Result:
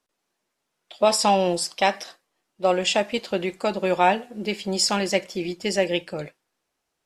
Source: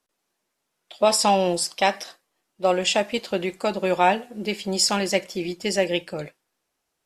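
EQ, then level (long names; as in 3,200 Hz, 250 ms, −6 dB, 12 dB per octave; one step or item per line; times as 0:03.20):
high-shelf EQ 11,000 Hz −7.5 dB
0.0 dB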